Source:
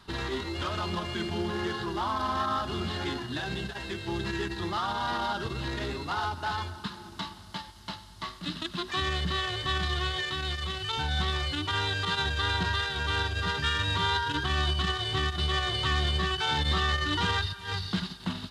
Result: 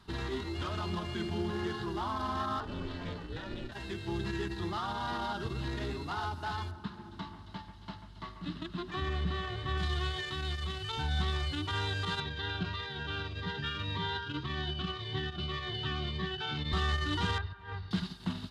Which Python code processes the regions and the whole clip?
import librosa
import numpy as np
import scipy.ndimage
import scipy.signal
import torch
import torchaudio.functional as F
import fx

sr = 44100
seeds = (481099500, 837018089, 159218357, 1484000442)

y = fx.chain(x, sr, fx.lowpass(hz=3800.0, slope=6),
    fx.ring_mod(carrier_hz=180.0), at=(2.6, 3.72))
y = fx.chain(y, sr, fx.lowpass(hz=2100.0, slope=6),
    fx.echo_split(split_hz=2800.0, low_ms=139, high_ms=271, feedback_pct=52, wet_db=-11.0), at=(6.71, 9.78))
y = fx.chain(y, sr, fx.cheby1_bandpass(low_hz=130.0, high_hz=3400.0, order=2),
    fx.notch_cascade(direction='falling', hz=1.8), at=(12.2, 16.73))
y = fx.chain(y, sr, fx.lowpass(hz=1700.0, slope=12),
    fx.peak_eq(hz=180.0, db=-7.0, octaves=2.1), at=(17.38, 17.91))
y = fx.low_shelf(y, sr, hz=480.0, db=5.5)
y = fx.notch(y, sr, hz=540.0, q=12.0)
y = F.gain(torch.from_numpy(y), -6.5).numpy()